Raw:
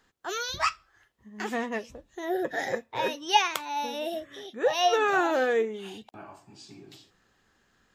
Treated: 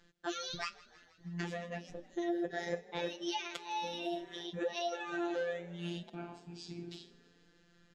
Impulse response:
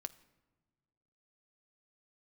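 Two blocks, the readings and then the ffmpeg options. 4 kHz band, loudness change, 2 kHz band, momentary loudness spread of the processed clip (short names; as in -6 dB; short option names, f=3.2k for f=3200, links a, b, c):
-10.0 dB, -11.5 dB, -12.0 dB, 11 LU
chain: -filter_complex "[0:a]equalizer=f=500:t=o:w=1:g=-3,equalizer=f=1k:t=o:w=1:g=-12,equalizer=f=2k:t=o:w=1:g=-4,acompressor=threshold=-40dB:ratio=6,highshelf=f=4.5k:g=-7.5,afftfilt=real='hypot(re,im)*cos(PI*b)':imag='0':win_size=1024:overlap=0.75,lowpass=6.3k,asplit=6[a][b][c][d][e][f];[b]adelay=160,afreqshift=31,volume=-22dB[g];[c]adelay=320,afreqshift=62,volume=-25.7dB[h];[d]adelay=480,afreqshift=93,volume=-29.5dB[i];[e]adelay=640,afreqshift=124,volume=-33.2dB[j];[f]adelay=800,afreqshift=155,volume=-37dB[k];[a][g][h][i][j][k]amix=inputs=6:normalize=0,volume=9dB"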